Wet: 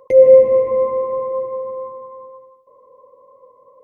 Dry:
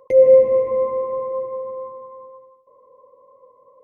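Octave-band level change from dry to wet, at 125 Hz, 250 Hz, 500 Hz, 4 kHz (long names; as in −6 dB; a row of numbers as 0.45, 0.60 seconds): can't be measured, +3.0 dB, +3.0 dB, can't be measured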